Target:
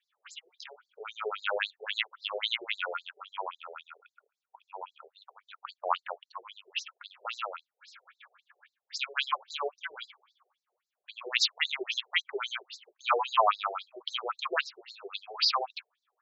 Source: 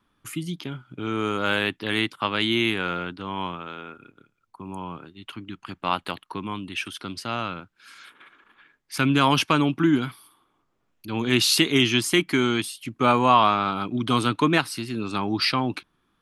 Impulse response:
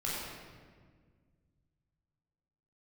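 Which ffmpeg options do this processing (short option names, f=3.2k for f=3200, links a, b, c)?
-filter_complex "[0:a]asettb=1/sr,asplit=3[a][b][c];[a]atrim=end=7.144[d];[b]atrim=start=7.14:end=7.56,asetpts=PTS-STARTPTS,afade=t=in:d=0.004:c=qsin,afade=t=out:st=0.416:d=0.004:c=qsin,aeval=exprs='val(0)+0.5*0.015*sgn(val(0))':c=same[e];[c]atrim=start=7.556[f];[d][e]acrossfade=d=0.004:c1=hsin:c2=qsin[g];[g][f]acrossfade=d=0.004:c1=qsin:c2=hsin,afftfilt=real='re*between(b*sr/1024,530*pow(5600/530,0.5+0.5*sin(2*PI*3.7*pts/sr))/1.41,530*pow(5600/530,0.5+0.5*sin(2*PI*3.7*pts/sr))*1.41)':imag='im*between(b*sr/1024,530*pow(5600/530,0.5+0.5*sin(2*PI*3.7*pts/sr))/1.41,530*pow(5600/530,0.5+0.5*sin(2*PI*3.7*pts/sr))*1.41)':win_size=1024:overlap=0.75"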